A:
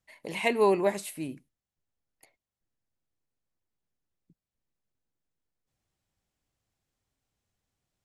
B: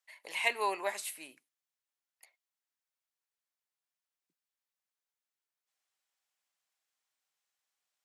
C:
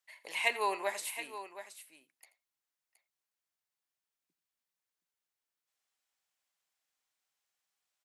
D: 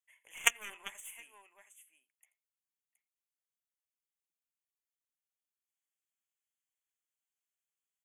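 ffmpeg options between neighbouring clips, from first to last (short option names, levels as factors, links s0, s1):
-af "highpass=990"
-af "aecho=1:1:84|721:0.133|0.251"
-af "aeval=exprs='0.251*(cos(1*acos(clip(val(0)/0.251,-1,1)))-cos(1*PI/2))+0.0398*(cos(2*acos(clip(val(0)/0.251,-1,1)))-cos(2*PI/2))+0.0891*(cos(3*acos(clip(val(0)/0.251,-1,1)))-cos(3*PI/2))':c=same,asuperstop=centerf=4600:order=20:qfactor=1.8,tiltshelf=f=1200:g=-8.5,volume=2.82"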